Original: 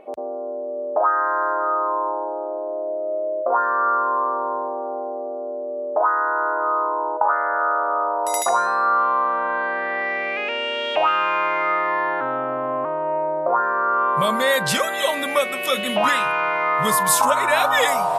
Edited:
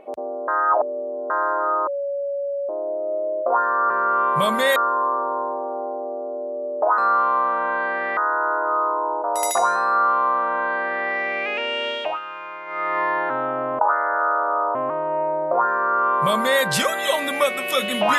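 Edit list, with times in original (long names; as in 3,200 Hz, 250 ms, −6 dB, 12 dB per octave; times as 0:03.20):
0:00.48–0:01.30: reverse
0:01.87–0:02.69: beep over 563 Hz −22.5 dBFS
0:07.19–0:08.15: move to 0:12.70
0:08.79–0:09.98: duplicate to 0:06.12
0:10.78–0:11.90: duck −13.5 dB, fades 0.33 s
0:13.71–0:14.57: duplicate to 0:03.90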